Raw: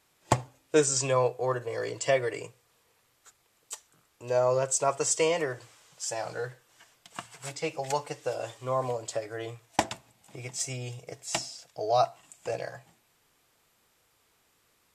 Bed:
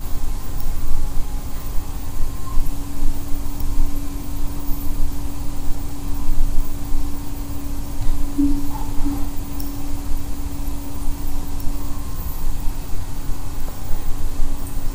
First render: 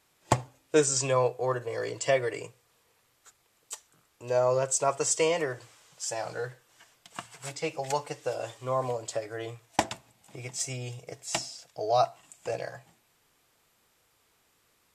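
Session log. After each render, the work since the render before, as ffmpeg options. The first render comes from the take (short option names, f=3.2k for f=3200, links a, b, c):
-af anull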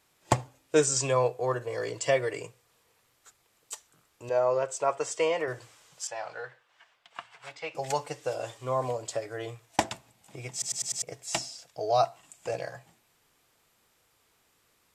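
-filter_complex "[0:a]asettb=1/sr,asplit=3[a][b][c];[a]atrim=end=4.294[d];[b]atrim=start=4.29:end=5.48,asetpts=PTS-STARTPTS,afade=t=in:d=0.004:c=qsin,afade=t=out:st=1.186:d=0.004:c=qsin,bass=f=250:g=-10,treble=f=4k:g=-11[e];[c]atrim=start=5.476[f];[d][e]acrossfade=d=0.004:c1=hsin:c2=qsin[g];[g][f]acrossfade=d=0.004:c1=qsin:c2=hsin,asettb=1/sr,asplit=3[h][i][j];[h]atrim=end=6.074[k];[i]atrim=start=6.07:end=7.75,asetpts=PTS-STARTPTS,afade=t=in:d=0.004:c=qsin,afade=t=out:st=1.676:d=0.004:c=qsin,acrossover=split=570 4000:gain=0.178 1 0.1[l][m][n];[l][m][n]amix=inputs=3:normalize=0[o];[j]atrim=start=7.746[p];[k][o]acrossfade=d=0.004:c1=hsin:c2=qsin[q];[q][p]acrossfade=d=0.004:c1=qsin:c2=hsin,asplit=6[r][s][t][u][v][w];[r]atrim=end=10.622[x];[s]atrim=start=10.518:end=10.622[y];[t]atrim=start=10.518:end=10.622[z];[u]atrim=start=10.518:end=10.622[aa];[v]atrim=start=10.518:end=10.622[ab];[w]atrim=start=11.018[ac];[x][y]acrossfade=d=0.004:c1=hsin:c2=hsin[ad];[ad][z]acrossfade=d=0.004:c1=hsin:c2=hsin[ae];[ae][aa]acrossfade=d=0.004:c1=hsin:c2=hsin[af];[af][ab]acrossfade=d=0.004:c1=hsin:c2=hsin[ag];[ag][ac]acrossfade=d=0.004:c1=hsin:c2=hsin"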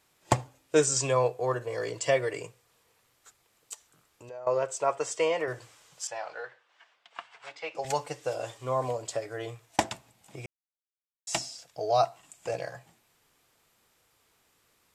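-filter_complex "[0:a]asettb=1/sr,asplit=3[a][b][c];[a]atrim=end=3.734[d];[b]atrim=start=3.73:end=4.47,asetpts=PTS-STARTPTS,afade=t=in:d=0.004:c=qsin,afade=t=out:st=0.736:d=0.004:c=qsin,acompressor=threshold=-47dB:ratio=2.5:attack=3.2:release=140:knee=1:detection=peak[e];[c]atrim=start=4.466[f];[d][e]acrossfade=d=0.004:c1=hsin:c2=qsin[g];[g][f]acrossfade=d=0.004:c1=qsin:c2=hsin,asettb=1/sr,asplit=3[h][i][j];[h]atrim=end=6.184[k];[i]atrim=start=6.18:end=7.85,asetpts=PTS-STARTPTS,afade=t=in:d=0.004:c=qsin,afade=t=out:st=1.666:d=0.004:c=qsin,highpass=240,lowpass=7.4k[l];[j]atrim=start=7.846[m];[k][l]acrossfade=d=0.004:c1=hsin:c2=qsin[n];[n][m]acrossfade=d=0.004:c1=qsin:c2=hsin,asplit=3[o][p][q];[o]atrim=end=10.46,asetpts=PTS-STARTPTS,afade=t=out:st=10.456:d=0.004:c=hsin[r];[p]atrim=start=10.46:end=11.27,asetpts=PTS-STARTPTS,volume=0[s];[q]atrim=start=11.27,asetpts=PTS-STARTPTS,afade=t=in:d=0.004:c=hsin[t];[r][s][t]concat=n=3:v=0:a=1"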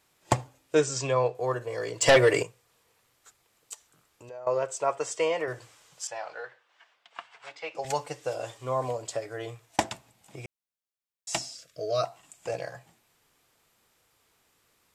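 -filter_complex "[0:a]asettb=1/sr,asplit=3[a][b][c];[a]atrim=end=0.754[d];[b]atrim=start=0.75:end=1.35,asetpts=PTS-STARTPTS,afade=t=in:d=0.004:c=qsin,afade=t=out:st=0.596:d=0.004:c=qsin,lowpass=5.4k[e];[c]atrim=start=1.346[f];[d][e]acrossfade=d=0.004:c1=hsin:c2=qsin[g];[g][f]acrossfade=d=0.004:c1=qsin:c2=hsin,asplit=3[h][i][j];[h]afade=t=out:st=2.01:d=0.02[k];[i]aeval=exprs='0.237*sin(PI/2*2.51*val(0)/0.237)':c=same,afade=t=in:st=2.01:d=0.02,afade=t=out:st=2.42:d=0.02[l];[j]afade=t=in:st=2.42:d=0.02[m];[k][l][m]amix=inputs=3:normalize=0,asettb=1/sr,asplit=3[n][o][p];[n]atrim=end=11.544[q];[o]atrim=start=11.54:end=12.04,asetpts=PTS-STARTPTS,afade=t=in:d=0.004:c=qsin,afade=t=out:st=0.496:d=0.004:c=qsin,asuperstop=centerf=850:order=8:qfactor=2[r];[p]atrim=start=12.036[s];[q][r]acrossfade=d=0.004:c1=hsin:c2=qsin[t];[t][s]acrossfade=d=0.004:c1=qsin:c2=hsin"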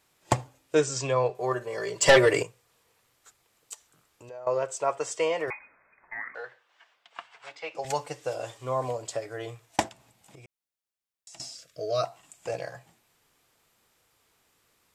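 -filter_complex "[0:a]asettb=1/sr,asplit=3[a][b][c];[a]atrim=end=1.294[d];[b]atrim=start=1.29:end=2.26,asetpts=PTS-STARTPTS,afade=t=in:d=0.004:c=qsin,afade=t=out:st=0.966:d=0.004:c=qsin,aecho=1:1:5.1:0.65,atrim=end_sample=42777[e];[c]atrim=start=2.256[f];[d][e]acrossfade=d=0.004:c1=hsin:c2=qsin[g];[g][f]acrossfade=d=0.004:c1=qsin:c2=hsin,asettb=1/sr,asplit=3[h][i][j];[h]atrim=end=5.504[k];[i]atrim=start=5.5:end=6.35,asetpts=PTS-STARTPTS,afade=t=in:d=0.004:c=qsin,afade=t=out:st=0.846:d=0.004:c=qsin,lowpass=f=2.2k:t=q:w=0.5098,lowpass=f=2.2k:t=q:w=0.6013,lowpass=f=2.2k:t=q:w=0.9,lowpass=f=2.2k:t=q:w=2.563,afreqshift=-2600[l];[j]atrim=start=6.346[m];[k][l]acrossfade=d=0.004:c1=hsin:c2=qsin[n];[n][m]acrossfade=d=0.004:c1=qsin:c2=hsin,asettb=1/sr,asplit=3[o][p][q];[o]atrim=end=9.884[r];[p]atrim=start=9.88:end=11.4,asetpts=PTS-STARTPTS,afade=t=in:d=0.004:c=qsin,afade=t=out:st=1.516:d=0.004:c=qsin,acompressor=threshold=-46dB:ratio=10:attack=3.2:release=140:knee=1:detection=peak[s];[q]atrim=start=11.396[t];[r][s]acrossfade=d=0.004:c1=hsin:c2=qsin[u];[u][t]acrossfade=d=0.004:c1=qsin:c2=hsin"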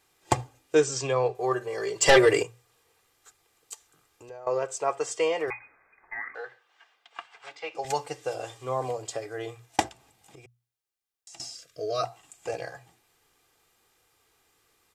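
-af "bandreject=f=60:t=h:w=6,bandreject=f=120:t=h:w=6,aecho=1:1:2.5:0.41"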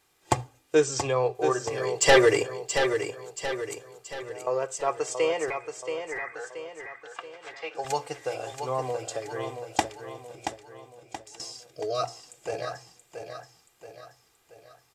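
-af "aecho=1:1:678|1356|2034|2712|3390|4068:0.422|0.202|0.0972|0.0466|0.0224|0.0107"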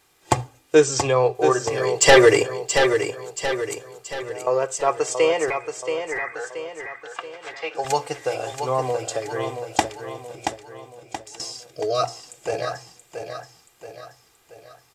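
-af "volume=6.5dB,alimiter=limit=-2dB:level=0:latency=1"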